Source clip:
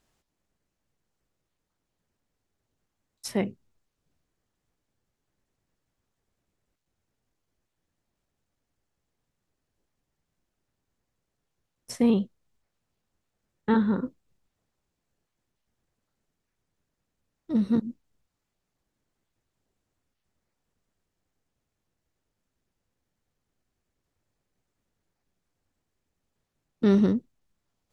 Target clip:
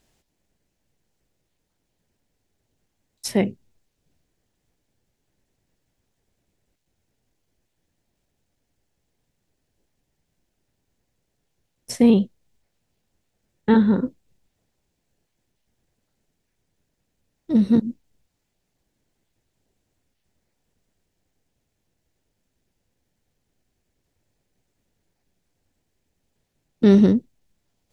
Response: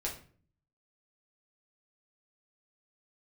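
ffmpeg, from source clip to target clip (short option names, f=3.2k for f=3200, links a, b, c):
-af "equalizer=f=1.2k:w=2.2:g=-7.5,volume=7dB"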